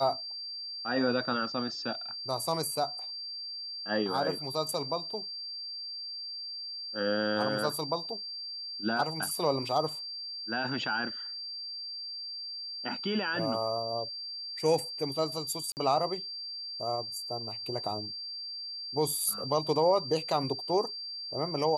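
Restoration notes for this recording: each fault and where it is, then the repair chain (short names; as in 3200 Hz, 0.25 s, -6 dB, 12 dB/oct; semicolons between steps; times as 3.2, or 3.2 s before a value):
tone 4700 Hz -37 dBFS
15.72–15.77 gap 49 ms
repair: notch 4700 Hz, Q 30; interpolate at 15.72, 49 ms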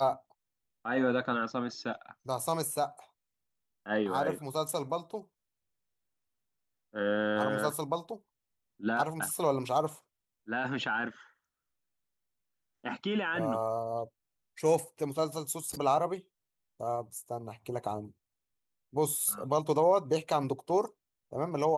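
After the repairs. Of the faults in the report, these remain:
none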